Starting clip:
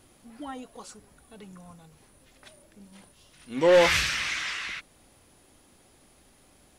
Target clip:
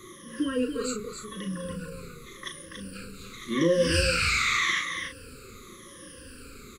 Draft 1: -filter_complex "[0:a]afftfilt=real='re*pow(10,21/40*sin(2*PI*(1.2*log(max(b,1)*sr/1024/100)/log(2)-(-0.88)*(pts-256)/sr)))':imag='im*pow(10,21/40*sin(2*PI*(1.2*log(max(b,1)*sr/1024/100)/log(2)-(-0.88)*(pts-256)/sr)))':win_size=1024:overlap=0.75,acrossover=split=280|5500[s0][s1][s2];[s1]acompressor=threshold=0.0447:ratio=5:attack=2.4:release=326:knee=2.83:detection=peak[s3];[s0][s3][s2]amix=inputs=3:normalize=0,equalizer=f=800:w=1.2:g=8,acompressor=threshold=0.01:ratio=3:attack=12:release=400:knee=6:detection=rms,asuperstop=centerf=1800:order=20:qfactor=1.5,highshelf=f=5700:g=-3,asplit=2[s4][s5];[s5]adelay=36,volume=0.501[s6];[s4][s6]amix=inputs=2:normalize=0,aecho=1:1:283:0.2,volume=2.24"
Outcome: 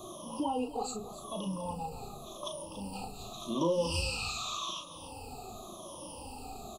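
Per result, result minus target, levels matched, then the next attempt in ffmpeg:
compression: peak gain reduction +7.5 dB; 2 kHz band -7.0 dB; echo-to-direct -7 dB
-filter_complex "[0:a]afftfilt=real='re*pow(10,21/40*sin(2*PI*(1.2*log(max(b,1)*sr/1024/100)/log(2)-(-0.88)*(pts-256)/sr)))':imag='im*pow(10,21/40*sin(2*PI*(1.2*log(max(b,1)*sr/1024/100)/log(2)-(-0.88)*(pts-256)/sr)))':win_size=1024:overlap=0.75,acrossover=split=280|5500[s0][s1][s2];[s1]acompressor=threshold=0.0447:ratio=5:attack=2.4:release=326:knee=2.83:detection=peak[s3];[s0][s3][s2]amix=inputs=3:normalize=0,equalizer=f=800:w=1.2:g=8,acompressor=threshold=0.0355:ratio=3:attack=12:release=400:knee=6:detection=rms,asuperstop=centerf=1800:order=20:qfactor=1.5,highshelf=f=5700:g=-3,asplit=2[s4][s5];[s5]adelay=36,volume=0.501[s6];[s4][s6]amix=inputs=2:normalize=0,aecho=1:1:283:0.2,volume=2.24"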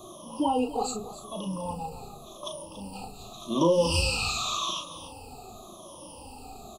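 2 kHz band -8.0 dB; echo-to-direct -7 dB
-filter_complex "[0:a]afftfilt=real='re*pow(10,21/40*sin(2*PI*(1.2*log(max(b,1)*sr/1024/100)/log(2)-(-0.88)*(pts-256)/sr)))':imag='im*pow(10,21/40*sin(2*PI*(1.2*log(max(b,1)*sr/1024/100)/log(2)-(-0.88)*(pts-256)/sr)))':win_size=1024:overlap=0.75,acrossover=split=280|5500[s0][s1][s2];[s1]acompressor=threshold=0.0447:ratio=5:attack=2.4:release=326:knee=2.83:detection=peak[s3];[s0][s3][s2]amix=inputs=3:normalize=0,equalizer=f=800:w=1.2:g=8,acompressor=threshold=0.0355:ratio=3:attack=12:release=400:knee=6:detection=rms,asuperstop=centerf=760:order=20:qfactor=1.5,highshelf=f=5700:g=-3,asplit=2[s4][s5];[s5]adelay=36,volume=0.501[s6];[s4][s6]amix=inputs=2:normalize=0,aecho=1:1:283:0.2,volume=2.24"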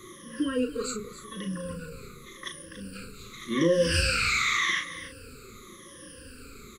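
echo-to-direct -7 dB
-filter_complex "[0:a]afftfilt=real='re*pow(10,21/40*sin(2*PI*(1.2*log(max(b,1)*sr/1024/100)/log(2)-(-0.88)*(pts-256)/sr)))':imag='im*pow(10,21/40*sin(2*PI*(1.2*log(max(b,1)*sr/1024/100)/log(2)-(-0.88)*(pts-256)/sr)))':win_size=1024:overlap=0.75,acrossover=split=280|5500[s0][s1][s2];[s1]acompressor=threshold=0.0447:ratio=5:attack=2.4:release=326:knee=2.83:detection=peak[s3];[s0][s3][s2]amix=inputs=3:normalize=0,equalizer=f=800:w=1.2:g=8,acompressor=threshold=0.0355:ratio=3:attack=12:release=400:knee=6:detection=rms,asuperstop=centerf=760:order=20:qfactor=1.5,highshelf=f=5700:g=-3,asplit=2[s4][s5];[s5]adelay=36,volume=0.501[s6];[s4][s6]amix=inputs=2:normalize=0,aecho=1:1:283:0.447,volume=2.24"

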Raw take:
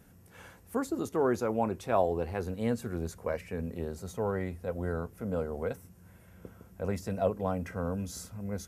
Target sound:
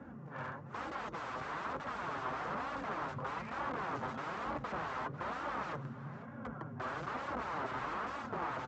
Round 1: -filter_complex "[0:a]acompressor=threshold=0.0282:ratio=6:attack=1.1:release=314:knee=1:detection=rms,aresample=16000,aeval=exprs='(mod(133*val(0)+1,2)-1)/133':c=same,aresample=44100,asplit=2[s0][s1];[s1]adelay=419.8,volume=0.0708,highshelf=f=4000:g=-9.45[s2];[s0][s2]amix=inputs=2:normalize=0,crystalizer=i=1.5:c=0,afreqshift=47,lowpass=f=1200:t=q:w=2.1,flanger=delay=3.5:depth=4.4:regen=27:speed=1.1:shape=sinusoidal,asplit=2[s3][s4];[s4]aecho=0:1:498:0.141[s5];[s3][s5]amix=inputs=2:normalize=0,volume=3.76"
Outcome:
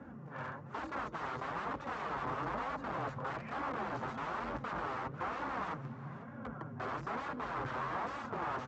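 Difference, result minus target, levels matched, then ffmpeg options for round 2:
compression: peak gain reduction +6.5 dB
-filter_complex "[0:a]acompressor=threshold=0.0708:ratio=6:attack=1.1:release=314:knee=1:detection=rms,aresample=16000,aeval=exprs='(mod(133*val(0)+1,2)-1)/133':c=same,aresample=44100,asplit=2[s0][s1];[s1]adelay=419.8,volume=0.0708,highshelf=f=4000:g=-9.45[s2];[s0][s2]amix=inputs=2:normalize=0,crystalizer=i=1.5:c=0,afreqshift=47,lowpass=f=1200:t=q:w=2.1,flanger=delay=3.5:depth=4.4:regen=27:speed=1.1:shape=sinusoidal,asplit=2[s3][s4];[s4]aecho=0:1:498:0.141[s5];[s3][s5]amix=inputs=2:normalize=0,volume=3.76"

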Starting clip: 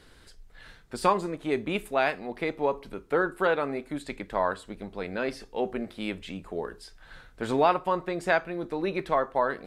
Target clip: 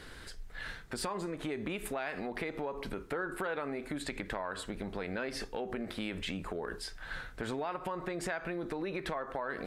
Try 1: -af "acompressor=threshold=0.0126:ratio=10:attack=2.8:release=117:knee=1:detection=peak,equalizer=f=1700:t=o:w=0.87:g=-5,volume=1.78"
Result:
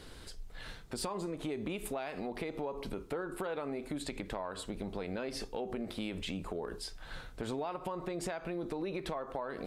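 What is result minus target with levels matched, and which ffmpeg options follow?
2 kHz band -6.0 dB
-af "acompressor=threshold=0.0126:ratio=10:attack=2.8:release=117:knee=1:detection=peak,equalizer=f=1700:t=o:w=0.87:g=4,volume=1.78"

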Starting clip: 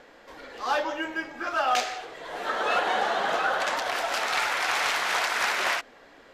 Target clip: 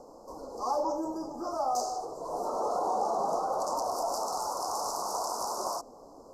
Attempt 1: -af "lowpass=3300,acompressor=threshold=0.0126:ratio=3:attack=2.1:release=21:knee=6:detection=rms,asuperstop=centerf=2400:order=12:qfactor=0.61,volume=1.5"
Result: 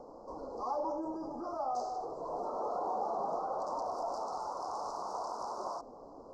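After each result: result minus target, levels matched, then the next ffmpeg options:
4 kHz band -7.5 dB; compression: peak gain reduction +5.5 dB
-af "acompressor=threshold=0.0126:ratio=3:attack=2.1:release=21:knee=6:detection=rms,asuperstop=centerf=2400:order=12:qfactor=0.61,volume=1.5"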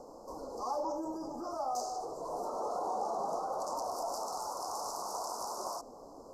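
compression: peak gain reduction +5.5 dB
-af "acompressor=threshold=0.0335:ratio=3:attack=2.1:release=21:knee=6:detection=rms,asuperstop=centerf=2400:order=12:qfactor=0.61,volume=1.5"

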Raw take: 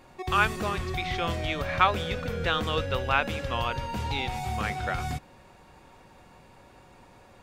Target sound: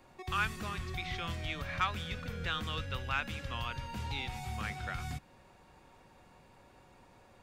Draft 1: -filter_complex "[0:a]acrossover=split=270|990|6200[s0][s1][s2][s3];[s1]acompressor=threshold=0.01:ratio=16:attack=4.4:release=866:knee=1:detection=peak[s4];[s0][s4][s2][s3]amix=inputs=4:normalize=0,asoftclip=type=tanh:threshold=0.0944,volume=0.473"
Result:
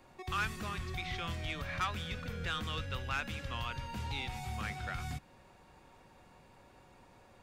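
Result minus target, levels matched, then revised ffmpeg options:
saturation: distortion +10 dB
-filter_complex "[0:a]acrossover=split=270|990|6200[s0][s1][s2][s3];[s1]acompressor=threshold=0.01:ratio=16:attack=4.4:release=866:knee=1:detection=peak[s4];[s0][s4][s2][s3]amix=inputs=4:normalize=0,asoftclip=type=tanh:threshold=0.237,volume=0.473"

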